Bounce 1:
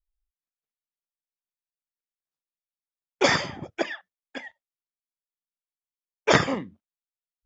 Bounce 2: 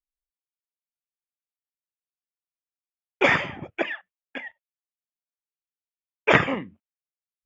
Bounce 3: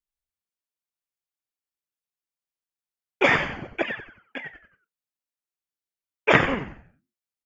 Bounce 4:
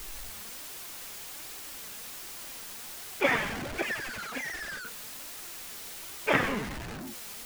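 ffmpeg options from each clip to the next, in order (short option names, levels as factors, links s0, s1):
-af "highshelf=f=3500:t=q:w=3:g=-9.5,agate=range=0.178:threshold=0.00316:ratio=16:detection=peak"
-filter_complex "[0:a]asplit=5[s0][s1][s2][s3][s4];[s1]adelay=91,afreqshift=-110,volume=0.282[s5];[s2]adelay=182,afreqshift=-220,volume=0.11[s6];[s3]adelay=273,afreqshift=-330,volume=0.0427[s7];[s4]adelay=364,afreqshift=-440,volume=0.0168[s8];[s0][s5][s6][s7][s8]amix=inputs=5:normalize=0"
-af "aeval=exprs='val(0)+0.5*0.0631*sgn(val(0))':c=same,flanger=delay=2.3:depth=2.7:regen=58:speed=1.3:shape=triangular,volume=0.596"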